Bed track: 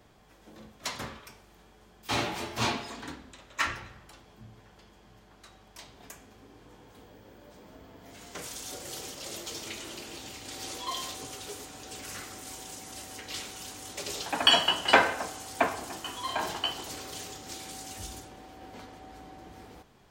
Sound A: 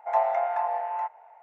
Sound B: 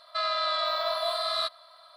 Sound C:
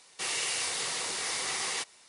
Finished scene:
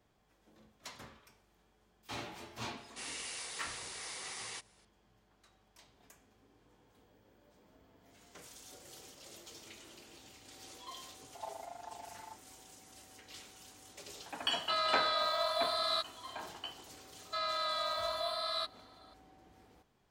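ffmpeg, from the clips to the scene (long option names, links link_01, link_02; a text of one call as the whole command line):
ffmpeg -i bed.wav -i cue0.wav -i cue1.wav -i cue2.wav -filter_complex "[2:a]asplit=2[link_01][link_02];[0:a]volume=-13.5dB[link_03];[1:a]tremolo=f=25:d=0.857[link_04];[3:a]atrim=end=2.08,asetpts=PTS-STARTPTS,volume=-11.5dB,afade=type=in:duration=0.004:curve=hsin,afade=type=out:start_time=2.076:duration=0.004:curve=hsin,adelay=2770[link_05];[link_04]atrim=end=1.42,asetpts=PTS-STARTPTS,volume=-18dB,afade=type=in:duration=0.004:curve=hsin,afade=type=out:start_time=1.416:duration=0.004:curve=hsin,adelay=11280[link_06];[link_01]atrim=end=1.96,asetpts=PTS-STARTPTS,volume=-4.5dB,afade=type=in:duration=0.004:curve=hsin,afade=type=out:start_time=1.956:duration=0.004:curve=hsin,adelay=14540[link_07];[link_02]atrim=end=1.96,asetpts=PTS-STARTPTS,volume=-7.5dB,afade=type=in:duration=0.004:curve=hsin,afade=type=out:start_time=1.956:duration=0.004:curve=hsin,adelay=17180[link_08];[link_03][link_05][link_06][link_07][link_08]amix=inputs=5:normalize=0" out.wav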